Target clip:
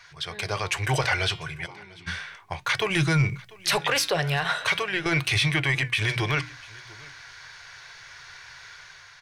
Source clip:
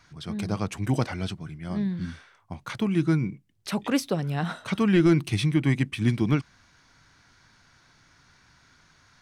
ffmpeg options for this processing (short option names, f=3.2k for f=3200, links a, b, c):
-filter_complex "[0:a]bandreject=f=1.3k:w=13,asplit=2[a][b];[b]asoftclip=type=hard:threshold=-27dB,volume=-10.5dB[c];[a][c]amix=inputs=2:normalize=0,dynaudnorm=f=240:g=5:m=6dB,bandreject=f=60:t=h:w=6,bandreject=f=120:t=h:w=6,bandreject=f=180:t=h:w=6,bandreject=f=240:t=h:w=6,bandreject=f=300:t=h:w=6,asettb=1/sr,asplit=3[d][e][f];[d]atrim=end=4.394[g];[e]atrim=start=4.39:end=5.06,asetpts=PTS-STARTPTS,afade=t=in:d=0.004:c=qsin,afade=t=out:st=0.666:d=0.004:c=qsin,acompressor=threshold=-22dB:ratio=6[h];[f]atrim=start=5.056[i];[g][h]acrossfade=d=0.004:c1=hsin:c2=qsin[j];[j][i]acrossfade=d=0.004:c1=qsin:c2=hsin,firequalizer=gain_entry='entry(140,0);entry(220,-23);entry(400,4);entry(1800,14);entry(8100,7)':delay=0.05:min_phase=1,flanger=delay=2.6:depth=6:regen=88:speed=0.36:shape=triangular,asplit=3[k][l][m];[k]afade=t=out:st=1.65:d=0.02[n];[l]asplit=3[o][p][q];[o]bandpass=f=300:t=q:w=8,volume=0dB[r];[p]bandpass=f=870:t=q:w=8,volume=-6dB[s];[q]bandpass=f=2.24k:t=q:w=8,volume=-9dB[t];[r][s][t]amix=inputs=3:normalize=0,afade=t=in:st=1.65:d=0.02,afade=t=out:st=2.06:d=0.02[u];[m]afade=t=in:st=2.06:d=0.02[v];[n][u][v]amix=inputs=3:normalize=0,asettb=1/sr,asplit=3[w][x][y];[w]atrim=end=2.904[z];[x]atrim=start=2.9:end=3.78,asetpts=PTS-STARTPTS,afade=t=in:d=0.004:c=qsin,afade=t=out:st=0.876:d=0.004:c=qsin,bass=f=250:g=8,treble=f=4k:g=7[aa];[y]atrim=start=3.776[ab];[z][aa]acrossfade=d=0.004:c1=hsin:c2=qsin[ac];[ac][ab]acrossfade=d=0.004:c1=qsin:c2=hsin,alimiter=limit=-13.5dB:level=0:latency=1:release=20,aecho=1:1:694:0.0708"